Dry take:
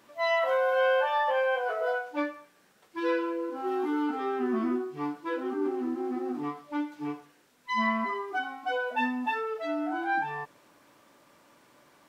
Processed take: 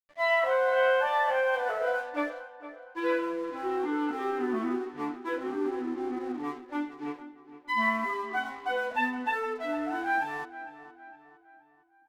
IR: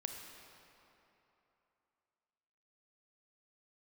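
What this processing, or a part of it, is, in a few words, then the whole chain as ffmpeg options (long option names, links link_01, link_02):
pocket radio on a weak battery: -filter_complex "[0:a]highpass=310,lowpass=4300,lowshelf=frequency=180:gain=9.5,aeval=exprs='sgn(val(0))*max(abs(val(0))-0.00316,0)':channel_layout=same,equalizer=frequency=1900:width_type=o:width=0.4:gain=4,asplit=2[link_01][link_02];[link_02]adelay=461,lowpass=frequency=3800:poles=1,volume=-14dB,asplit=2[link_03][link_04];[link_04]adelay=461,lowpass=frequency=3800:poles=1,volume=0.45,asplit=2[link_05][link_06];[link_06]adelay=461,lowpass=frequency=3800:poles=1,volume=0.45,asplit=2[link_07][link_08];[link_08]adelay=461,lowpass=frequency=3800:poles=1,volume=0.45[link_09];[link_01][link_03][link_05][link_07][link_09]amix=inputs=5:normalize=0"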